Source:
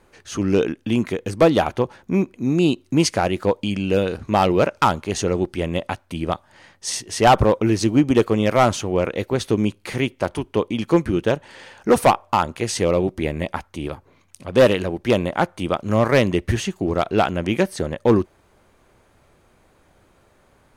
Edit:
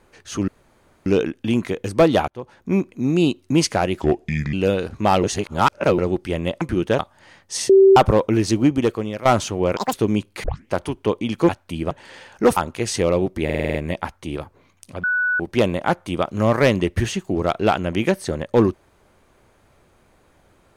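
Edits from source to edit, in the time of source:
0.48 insert room tone 0.58 s
1.7–2.16 fade in
3.42–3.82 speed 75%
4.52–5.27 reverse
5.9–6.32 swap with 10.98–11.36
7.02–7.29 bleep 387 Hz -7 dBFS
7.93–8.58 fade out, to -14.5 dB
9.09–9.43 speed 197%
9.93 tape start 0.25 s
12.02–12.38 cut
13.26 stutter 0.05 s, 7 plays
14.55–14.91 bleep 1480 Hz -17 dBFS

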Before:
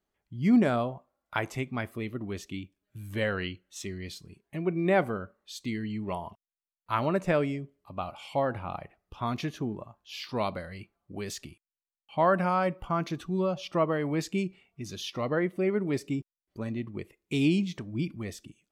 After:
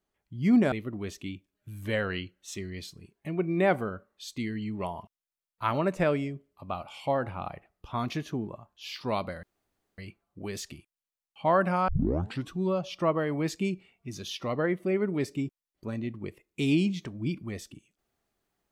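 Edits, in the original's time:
0.72–2 cut
10.71 insert room tone 0.55 s
12.61 tape start 0.62 s

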